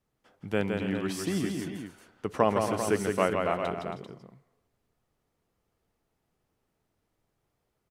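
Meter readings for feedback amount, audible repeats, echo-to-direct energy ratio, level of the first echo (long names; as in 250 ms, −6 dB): repeats not evenly spaced, 4, −2.5 dB, −4.5 dB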